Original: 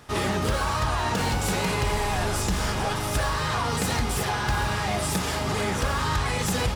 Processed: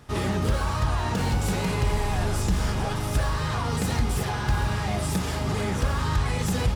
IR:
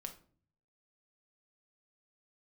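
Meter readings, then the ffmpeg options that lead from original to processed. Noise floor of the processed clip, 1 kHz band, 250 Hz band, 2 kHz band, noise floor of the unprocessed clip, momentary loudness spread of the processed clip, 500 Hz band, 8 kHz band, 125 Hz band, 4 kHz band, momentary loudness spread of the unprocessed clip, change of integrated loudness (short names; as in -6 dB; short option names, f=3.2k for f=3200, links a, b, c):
-29 dBFS, -3.5 dB, +1.0 dB, -4.5 dB, -28 dBFS, 2 LU, -2.0 dB, -4.5 dB, +3.0 dB, -4.5 dB, 1 LU, -0.5 dB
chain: -af "lowshelf=f=300:g=8.5,volume=-4.5dB"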